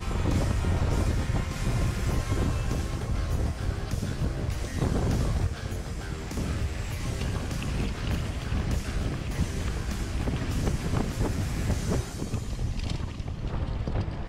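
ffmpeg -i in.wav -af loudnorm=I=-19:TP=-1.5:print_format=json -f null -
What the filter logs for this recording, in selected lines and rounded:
"input_i" : "-30.6",
"input_tp" : "-12.4",
"input_lra" : "2.4",
"input_thresh" : "-40.6",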